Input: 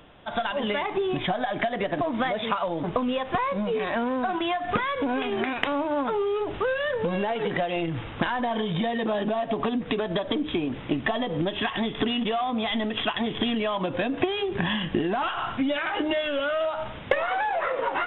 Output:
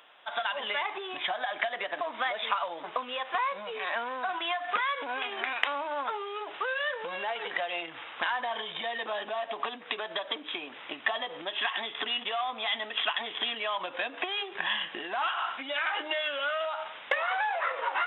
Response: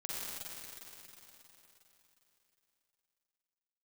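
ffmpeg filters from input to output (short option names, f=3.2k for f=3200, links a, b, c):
-af "highpass=920"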